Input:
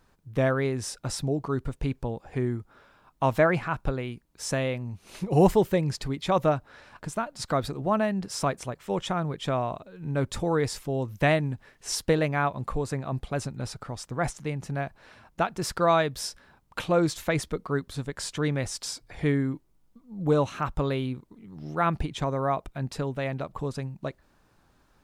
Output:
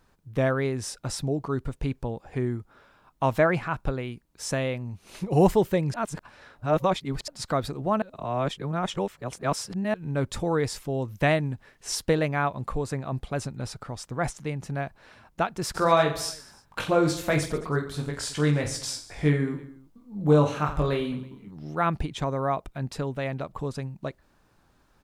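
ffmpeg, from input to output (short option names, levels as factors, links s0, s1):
-filter_complex "[0:a]asplit=3[s0][s1][s2];[s0]afade=t=out:st=15.74:d=0.02[s3];[s1]aecho=1:1:20|48|87.2|142.1|218.9|326.5:0.631|0.398|0.251|0.158|0.1|0.0631,afade=t=in:st=15.74:d=0.02,afade=t=out:st=21.5:d=0.02[s4];[s2]afade=t=in:st=21.5:d=0.02[s5];[s3][s4][s5]amix=inputs=3:normalize=0,asplit=5[s6][s7][s8][s9][s10];[s6]atrim=end=5.942[s11];[s7]atrim=start=5.938:end=7.282,asetpts=PTS-STARTPTS,areverse[s12];[s8]atrim=start=7.278:end=8.022[s13];[s9]atrim=start=8.018:end=9.942,asetpts=PTS-STARTPTS,areverse[s14];[s10]atrim=start=9.938[s15];[s11][s12]acrossfade=d=0.004:c1=hsin:c2=hsin[s16];[s16][s13]acrossfade=d=0.004:c1=hsin:c2=hsin[s17];[s17][s14]acrossfade=d=0.004:c1=hsin:c2=hsin[s18];[s18][s15]acrossfade=d=0.004:c1=hsin:c2=hsin"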